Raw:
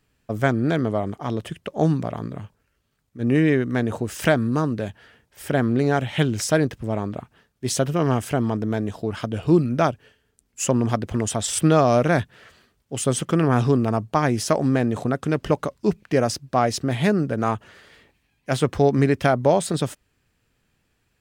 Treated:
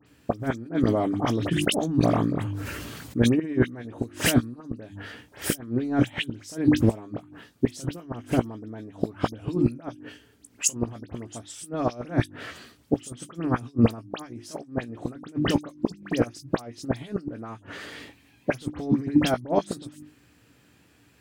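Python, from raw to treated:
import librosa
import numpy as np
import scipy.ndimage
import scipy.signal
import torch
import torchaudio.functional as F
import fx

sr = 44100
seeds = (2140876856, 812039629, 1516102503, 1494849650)

y = scipy.signal.sosfilt(scipy.signal.butter(4, 66.0, 'highpass', fs=sr, output='sos'), x)
y = fx.peak_eq(y, sr, hz=290.0, db=12.5, octaves=0.27)
y = fx.hum_notches(y, sr, base_hz=50, count=7)
y = fx.over_compress(y, sr, threshold_db=-21.0, ratio=-0.5)
y = fx.gate_flip(y, sr, shuts_db=-13.0, range_db=-25)
y = fx.doubler(y, sr, ms=17.0, db=-12.0)
y = fx.dispersion(y, sr, late='highs', ms=65.0, hz=2800.0)
y = fx.sustainer(y, sr, db_per_s=22.0, at=(0.63, 3.4))
y = y * librosa.db_to_amplitude(5.5)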